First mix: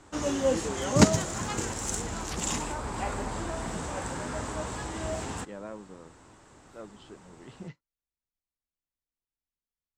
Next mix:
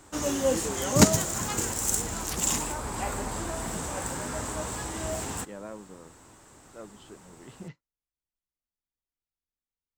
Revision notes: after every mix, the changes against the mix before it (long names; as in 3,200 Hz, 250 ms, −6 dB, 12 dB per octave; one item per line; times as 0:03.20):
background: remove high-frequency loss of the air 68 metres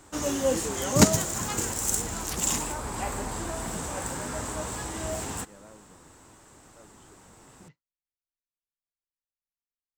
speech −11.0 dB